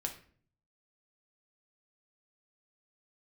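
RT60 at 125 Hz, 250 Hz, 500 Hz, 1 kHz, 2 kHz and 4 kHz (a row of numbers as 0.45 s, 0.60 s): 0.90 s, 0.70 s, 0.55 s, 0.45 s, 0.45 s, 0.35 s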